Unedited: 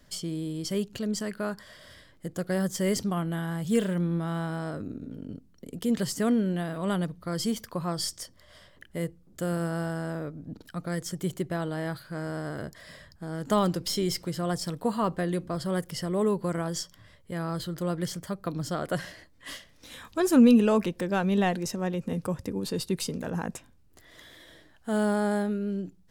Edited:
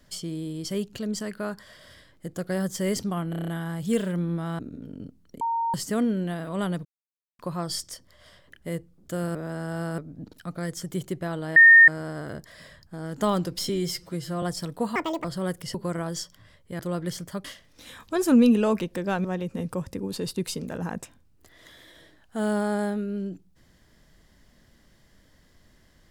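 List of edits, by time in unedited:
3.30 s: stutter 0.03 s, 7 plays
4.41–4.88 s: delete
5.70–6.03 s: bleep 922 Hz -23 dBFS
7.14–7.68 s: mute
9.64–10.27 s: reverse
11.85–12.17 s: bleep 1.83 kHz -8.5 dBFS
13.98–14.47 s: stretch 1.5×
15.00–15.53 s: speed 183%
16.03–16.34 s: delete
17.39–17.75 s: delete
18.40–19.49 s: delete
21.29–21.77 s: delete

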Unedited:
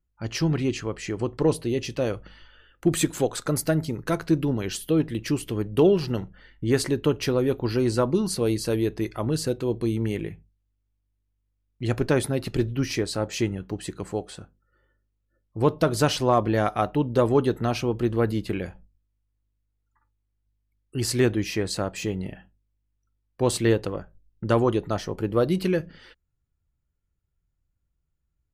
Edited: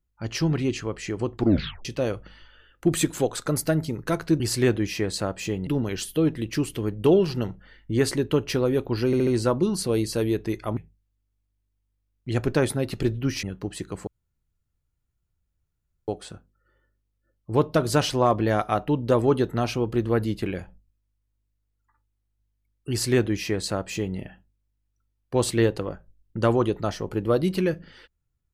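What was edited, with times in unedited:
1.33 s: tape stop 0.52 s
7.79 s: stutter 0.07 s, 4 plays
9.29–10.31 s: delete
12.97–13.51 s: delete
14.15 s: insert room tone 2.01 s
20.97–22.24 s: copy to 4.40 s

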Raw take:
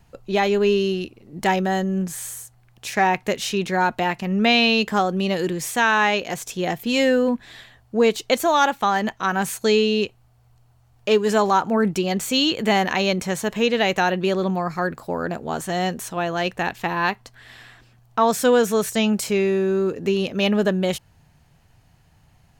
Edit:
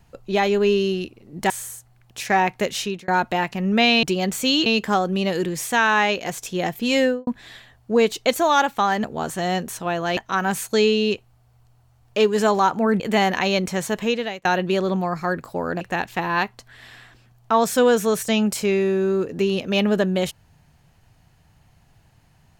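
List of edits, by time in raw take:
1.50–2.17 s: delete
3.47–3.75 s: fade out
7.06–7.31 s: studio fade out
11.91–12.54 s: move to 4.70 s
13.55–13.99 s: fade out
15.35–16.48 s: move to 9.08 s

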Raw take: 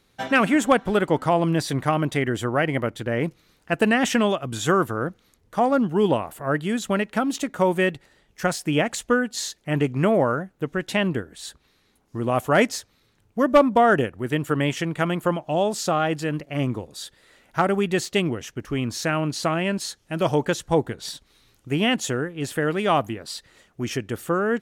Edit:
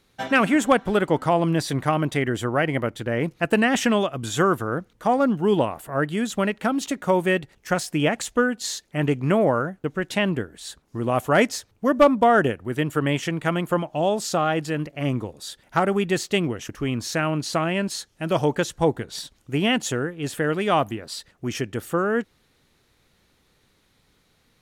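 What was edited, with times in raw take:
shorten pauses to 0.21 s

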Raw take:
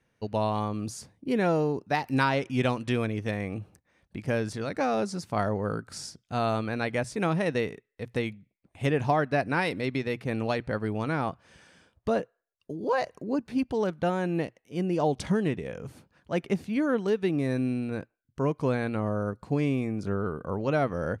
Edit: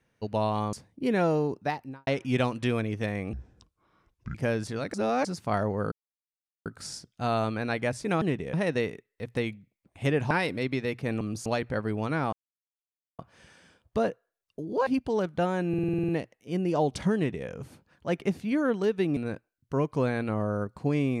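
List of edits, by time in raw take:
0.73–0.98 s: move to 10.43 s
1.78–2.32 s: studio fade out
3.58–4.20 s: speed 61%
4.79–5.10 s: reverse
5.77 s: insert silence 0.74 s
9.10–9.53 s: delete
11.30 s: insert silence 0.86 s
12.98–13.51 s: delete
14.33 s: stutter 0.05 s, 9 plays
15.40–15.72 s: copy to 7.33 s
17.41–17.83 s: delete

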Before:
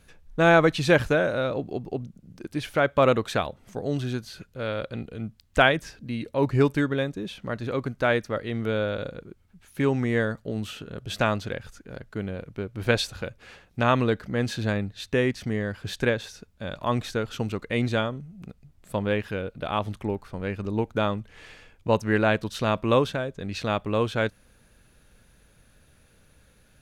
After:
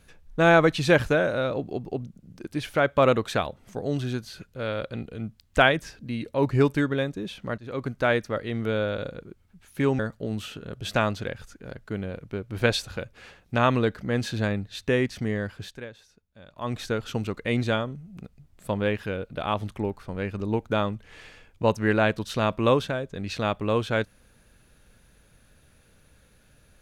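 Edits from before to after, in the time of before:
7.58–7.88 s: fade in, from -17.5 dB
9.99–10.24 s: delete
15.71–17.10 s: dip -15.5 dB, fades 0.32 s

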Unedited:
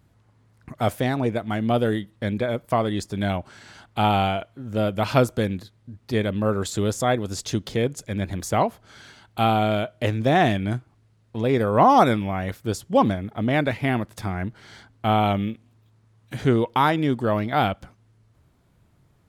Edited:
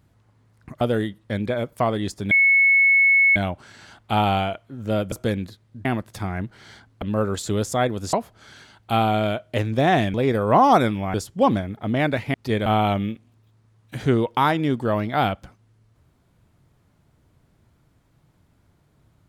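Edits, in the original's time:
0.81–1.73 s: delete
3.23 s: add tone 2.2 kHz -12.5 dBFS 1.05 s
4.99–5.25 s: delete
5.98–6.30 s: swap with 13.88–15.05 s
7.41–8.61 s: delete
10.62–11.40 s: delete
12.40–12.68 s: delete

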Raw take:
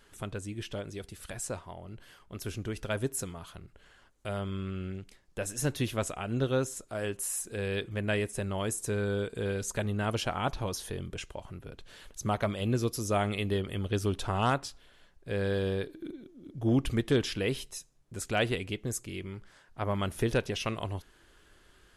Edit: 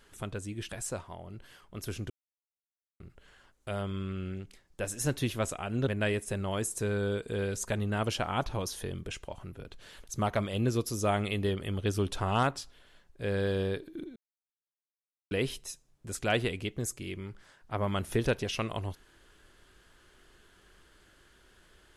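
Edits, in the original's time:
0.69–1.27 s: delete
2.68–3.58 s: mute
6.45–7.94 s: delete
16.23–17.38 s: mute

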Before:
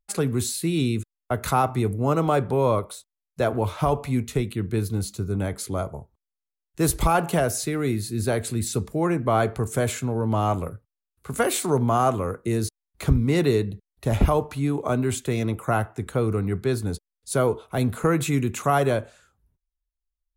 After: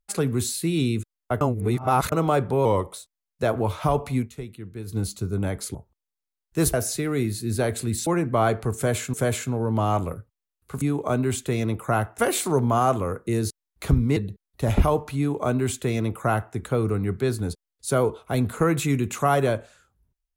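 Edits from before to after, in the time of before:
1.41–2.12 s: reverse
2.65–2.91 s: speed 91%
4.15–4.95 s: dip -11 dB, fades 0.12 s
5.72–5.97 s: delete
6.96–7.42 s: delete
8.75–9.00 s: delete
9.69–10.07 s: loop, 2 plays
13.35–13.60 s: delete
14.61–15.98 s: copy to 11.37 s

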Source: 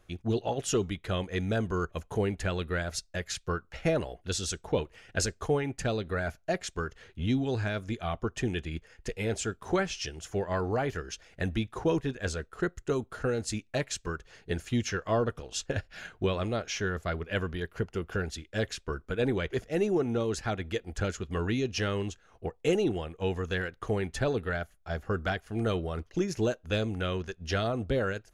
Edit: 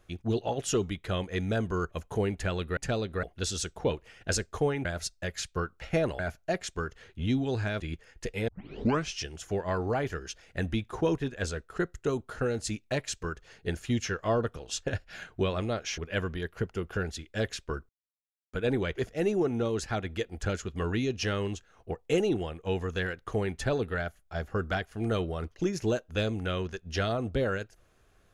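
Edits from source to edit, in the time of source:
2.77–4.11 s: swap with 5.73–6.19 s
7.80–8.63 s: delete
9.31 s: tape start 0.61 s
16.81–17.17 s: delete
19.08 s: insert silence 0.64 s

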